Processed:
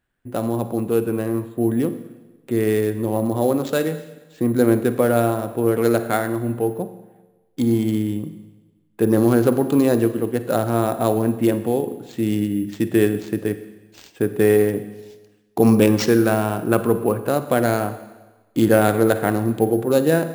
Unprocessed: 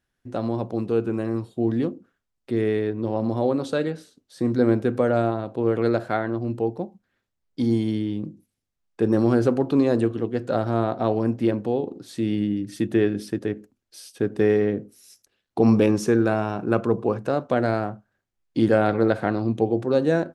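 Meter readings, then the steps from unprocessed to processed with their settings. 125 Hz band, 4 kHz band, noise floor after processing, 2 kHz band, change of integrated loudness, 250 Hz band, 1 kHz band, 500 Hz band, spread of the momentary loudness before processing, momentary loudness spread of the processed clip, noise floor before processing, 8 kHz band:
+3.0 dB, +5.5 dB, -59 dBFS, +4.5 dB, +3.5 dB, +3.0 dB, +3.5 dB, +3.5 dB, 9 LU, 10 LU, -80 dBFS, no reading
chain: local Wiener filter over 9 samples; treble shelf 3.8 kHz +12 dB; Schroeder reverb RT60 1.2 s, DRR 11.5 dB; careless resampling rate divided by 4×, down none, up hold; trim +3 dB

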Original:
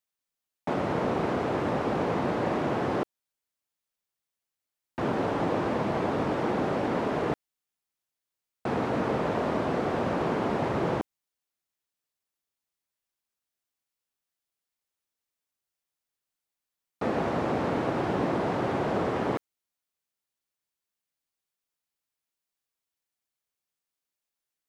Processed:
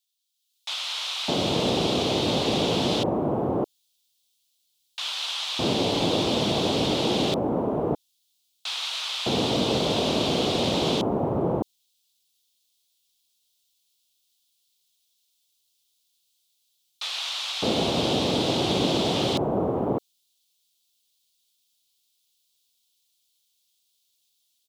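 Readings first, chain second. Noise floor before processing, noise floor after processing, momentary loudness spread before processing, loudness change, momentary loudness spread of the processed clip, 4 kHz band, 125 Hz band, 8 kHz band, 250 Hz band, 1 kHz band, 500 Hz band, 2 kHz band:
under -85 dBFS, -72 dBFS, 5 LU, +4.0 dB, 7 LU, +20.5 dB, +4.0 dB, no reading, +3.5 dB, +0.5 dB, +3.0 dB, +1.5 dB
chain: resonant high shelf 2.5 kHz +12 dB, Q 3; level rider gain up to 9 dB; bands offset in time highs, lows 610 ms, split 1.2 kHz; trim -5 dB

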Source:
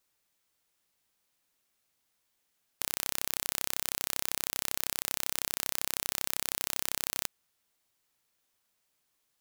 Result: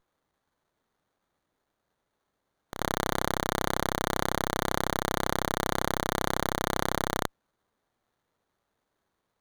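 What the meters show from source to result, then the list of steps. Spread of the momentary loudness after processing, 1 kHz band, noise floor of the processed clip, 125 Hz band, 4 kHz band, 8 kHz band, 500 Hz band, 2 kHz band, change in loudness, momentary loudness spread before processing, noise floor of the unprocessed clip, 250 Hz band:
2 LU, +15.5 dB, -81 dBFS, +17.5 dB, +1.5 dB, -4.0 dB, +17.0 dB, +8.0 dB, +2.5 dB, 2 LU, -78 dBFS, +17.5 dB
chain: reverse echo 86 ms -18.5 dB; peak limiter -13 dBFS, peak gain reduction 9.5 dB; sliding maximum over 17 samples; trim +2.5 dB

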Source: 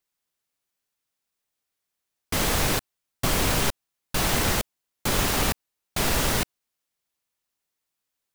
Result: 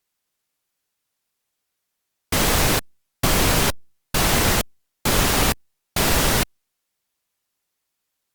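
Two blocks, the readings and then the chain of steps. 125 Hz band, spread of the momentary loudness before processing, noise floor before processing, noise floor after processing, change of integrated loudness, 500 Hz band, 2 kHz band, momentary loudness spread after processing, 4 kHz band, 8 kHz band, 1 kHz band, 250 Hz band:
+5.0 dB, 9 LU, -83 dBFS, -79 dBFS, +5.0 dB, +5.0 dB, +5.0 dB, 9 LU, +5.0 dB, +5.0 dB, +5.0 dB, +5.0 dB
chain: trim +5 dB; Opus 64 kbps 48 kHz

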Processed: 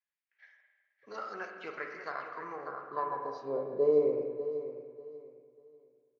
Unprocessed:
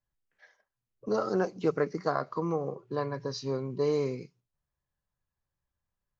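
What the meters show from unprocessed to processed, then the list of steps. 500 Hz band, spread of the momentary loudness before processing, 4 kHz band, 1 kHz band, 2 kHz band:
-1.0 dB, 7 LU, under -10 dB, -1.5 dB, -0.5 dB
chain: feedback delay 592 ms, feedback 27%, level -12 dB; band-pass sweep 2.2 kHz -> 520 Hz, 2.24–3.68 s; spring tank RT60 1.5 s, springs 40/50 ms, chirp 80 ms, DRR 3.5 dB; trim +3.5 dB

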